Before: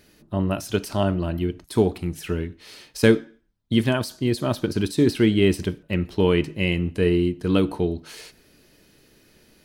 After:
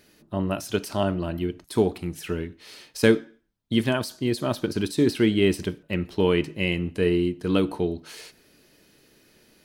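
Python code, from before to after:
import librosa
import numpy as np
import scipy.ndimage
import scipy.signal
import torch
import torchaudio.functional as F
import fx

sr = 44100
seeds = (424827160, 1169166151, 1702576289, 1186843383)

y = fx.low_shelf(x, sr, hz=110.0, db=-8.0)
y = y * 10.0 ** (-1.0 / 20.0)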